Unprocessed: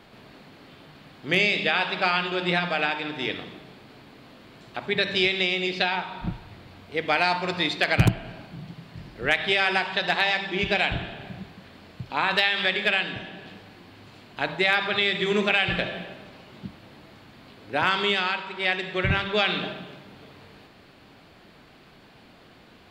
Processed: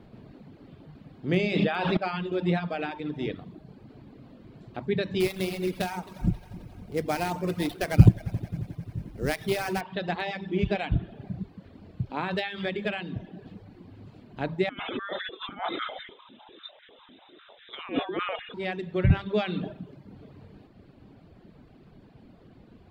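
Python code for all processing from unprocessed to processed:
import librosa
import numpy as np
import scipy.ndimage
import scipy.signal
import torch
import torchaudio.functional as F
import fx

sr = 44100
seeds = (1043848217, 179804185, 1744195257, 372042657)

y = fx.chain(x, sr, fx.clip_hard(threshold_db=-9.0),
    fx.env_flatten(amount_pct=100), at=(1.39, 1.97))
y = fx.chain(y, sr, fx.sample_hold(seeds[0], rate_hz=7300.0, jitter_pct=20),
    fx.echo_heads(ms=89, heads='first and third', feedback_pct=64, wet_db=-16.5), at=(5.2, 9.81))
y = fx.chain(y, sr, fx.over_compress(threshold_db=-27.0, ratio=-0.5),
    fx.freq_invert(carrier_hz=3800),
    fx.filter_held_highpass(hz=10.0, low_hz=260.0, high_hz=1700.0), at=(14.69, 18.54))
y = fx.dereverb_blind(y, sr, rt60_s=0.78)
y = fx.tilt_shelf(y, sr, db=10.0, hz=650.0)
y = y * librosa.db_to_amplitude(-3.0)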